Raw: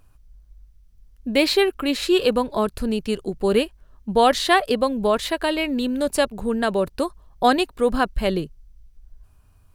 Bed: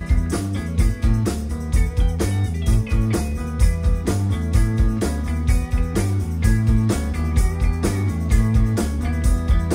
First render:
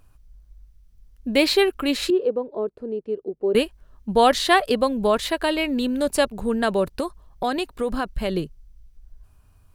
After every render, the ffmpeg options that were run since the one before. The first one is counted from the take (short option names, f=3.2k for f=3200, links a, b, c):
-filter_complex "[0:a]asettb=1/sr,asplit=3[a][b][c];[a]atrim=end=2.104[d];[b]atrim=start=2.1:end=3.55,asetpts=PTS-STARTPTS,afade=t=in:d=0.004:c=qsin,afade=t=out:st=1.446:d=0.004:c=qsin,bandpass=f=420:t=q:w=2.5[e];[c]atrim=start=3.546[f];[d][e]acrossfade=d=0.004:c1=hsin:c2=qsin[g];[g][f]acrossfade=d=0.004:c1=qsin:c2=hsin,asettb=1/sr,asplit=3[h][i][j];[h]atrim=end=7.004[k];[i]atrim=start=7:end=8.37,asetpts=PTS-STARTPTS,afade=t=in:d=0.004:c=qsin,afade=t=out:st=1.366:d=0.004:c=qsin,acompressor=threshold=-21dB:ratio=3:attack=3.2:release=140:knee=1:detection=peak[l];[j]atrim=start=8.366[m];[k][l]acrossfade=d=0.004:c1=hsin:c2=qsin[n];[n][m]acrossfade=d=0.004:c1=qsin:c2=hsin"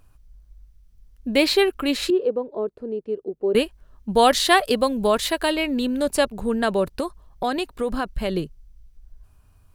-filter_complex "[0:a]asettb=1/sr,asplit=3[a][b][c];[a]atrim=end=4.144[d];[b]atrim=start=4.14:end=5.52,asetpts=PTS-STARTPTS,afade=t=in:d=0.004:c=qsin,afade=t=out:st=1.376:d=0.004:c=qsin,highshelf=f=4.6k:g=6.5[e];[c]atrim=start=5.516[f];[d][e]acrossfade=d=0.004:c1=hsin:c2=qsin[g];[g][f]acrossfade=d=0.004:c1=qsin:c2=hsin"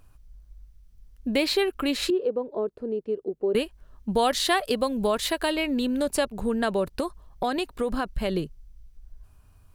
-af "acompressor=threshold=-24dB:ratio=2"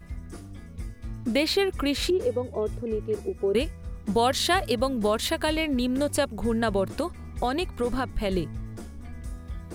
-filter_complex "[1:a]volume=-19dB[a];[0:a][a]amix=inputs=2:normalize=0"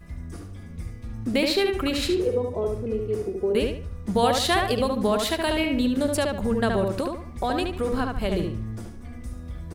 -filter_complex "[0:a]asplit=2[a][b];[b]adelay=73,lowpass=f=3.3k:p=1,volume=-3dB,asplit=2[c][d];[d]adelay=73,lowpass=f=3.3k:p=1,volume=0.36,asplit=2[e][f];[f]adelay=73,lowpass=f=3.3k:p=1,volume=0.36,asplit=2[g][h];[h]adelay=73,lowpass=f=3.3k:p=1,volume=0.36,asplit=2[i][j];[j]adelay=73,lowpass=f=3.3k:p=1,volume=0.36[k];[a][c][e][g][i][k]amix=inputs=6:normalize=0"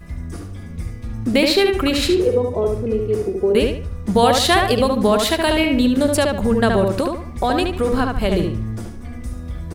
-af "volume=7dB,alimiter=limit=-3dB:level=0:latency=1"